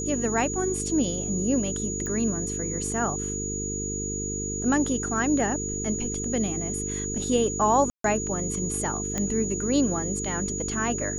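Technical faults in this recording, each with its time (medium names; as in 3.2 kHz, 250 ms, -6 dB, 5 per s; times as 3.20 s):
buzz 50 Hz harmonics 9 -33 dBFS
whine 6.8 kHz -31 dBFS
2.06 s: pop -20 dBFS
7.90–8.04 s: dropout 143 ms
9.18 s: pop -14 dBFS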